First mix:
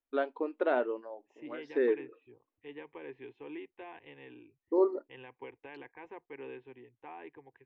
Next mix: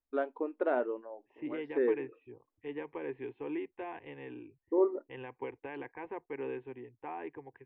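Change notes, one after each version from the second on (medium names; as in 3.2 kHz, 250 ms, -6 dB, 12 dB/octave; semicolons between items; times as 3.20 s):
second voice +7.5 dB; master: add distance through air 450 m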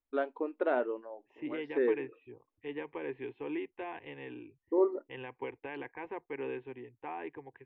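master: add treble shelf 3.7 kHz +12 dB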